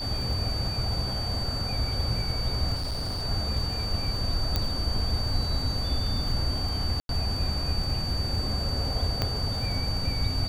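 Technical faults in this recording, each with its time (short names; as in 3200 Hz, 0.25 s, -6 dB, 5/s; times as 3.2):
crackle 27/s -33 dBFS
tone 4600 Hz -32 dBFS
2.75–3.23 clipped -27 dBFS
4.56 pop -11 dBFS
7–7.09 gap 92 ms
9.22 pop -12 dBFS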